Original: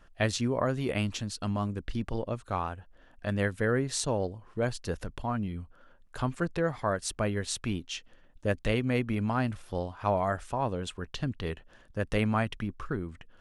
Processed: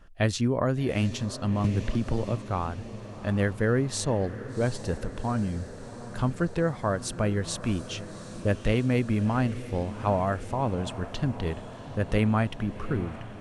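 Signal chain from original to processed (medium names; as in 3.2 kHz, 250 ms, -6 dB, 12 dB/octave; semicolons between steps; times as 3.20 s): bass shelf 400 Hz +5.5 dB; echo that smears into a reverb 751 ms, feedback 68%, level -14 dB; 1.64–2.37 s: three bands compressed up and down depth 100%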